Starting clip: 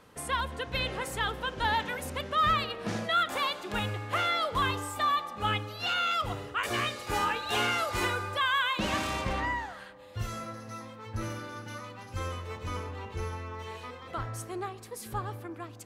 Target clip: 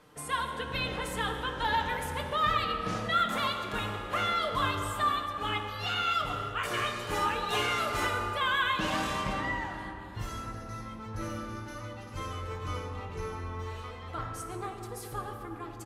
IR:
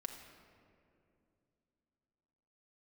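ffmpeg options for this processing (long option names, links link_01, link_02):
-filter_complex "[0:a]asplit=2[link_01][link_02];[link_02]adelay=22,volume=-12.5dB[link_03];[link_01][link_03]amix=inputs=2:normalize=0[link_04];[1:a]atrim=start_sample=2205,asetrate=28665,aresample=44100[link_05];[link_04][link_05]afir=irnorm=-1:irlink=0,volume=-1dB"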